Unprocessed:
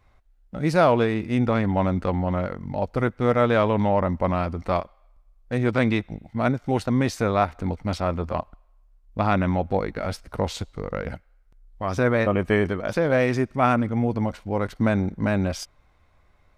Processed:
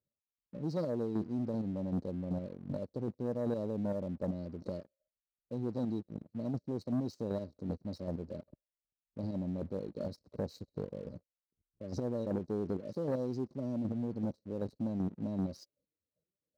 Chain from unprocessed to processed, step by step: spectral noise reduction 12 dB; square tremolo 2.6 Hz, depth 65%, duty 20%; dynamic bell 540 Hz, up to -4 dB, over -39 dBFS, Q 1.6; peak limiter -17 dBFS, peak gain reduction 8.5 dB; brick-wall FIR band-stop 630–3800 Hz; distance through air 160 m; waveshaping leveller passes 2; high-pass 140 Hz 12 dB/octave; trim -8 dB

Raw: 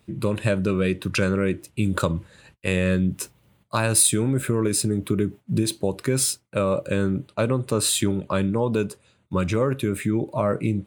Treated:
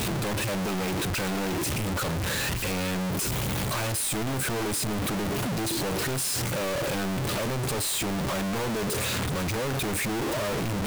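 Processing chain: one-bit comparator; trim -4.5 dB

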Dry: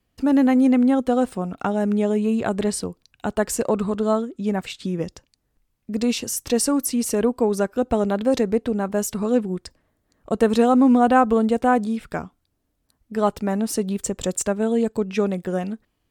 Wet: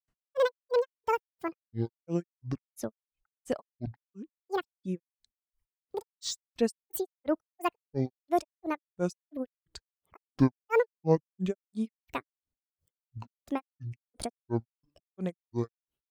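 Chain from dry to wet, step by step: granulator 174 ms, grains 2.9 per s, pitch spread up and down by 12 st; reverb removal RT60 0.98 s; trim -5.5 dB

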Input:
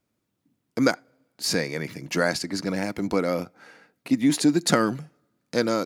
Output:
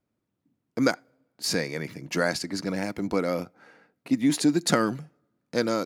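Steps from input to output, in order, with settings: tape noise reduction on one side only decoder only; trim -2 dB

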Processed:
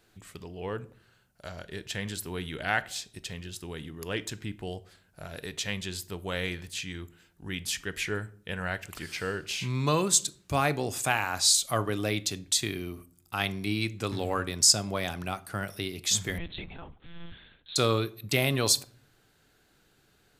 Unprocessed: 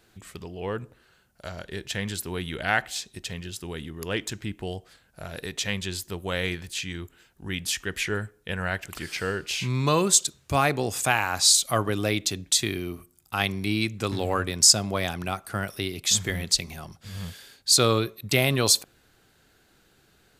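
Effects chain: reverberation RT60 0.55 s, pre-delay 7 ms, DRR 15 dB; 16.38–17.76 s: monotone LPC vocoder at 8 kHz 170 Hz; trim -4 dB

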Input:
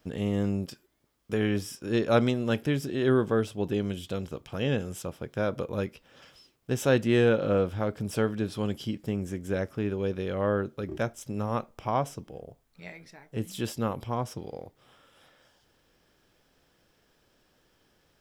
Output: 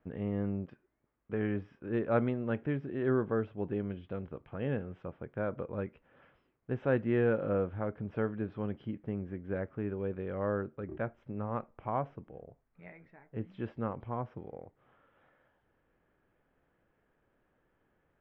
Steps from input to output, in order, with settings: low-pass 2.1 kHz 24 dB/octave; trim -6 dB

